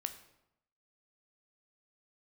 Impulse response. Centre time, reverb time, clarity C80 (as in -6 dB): 9 ms, 0.85 s, 14.0 dB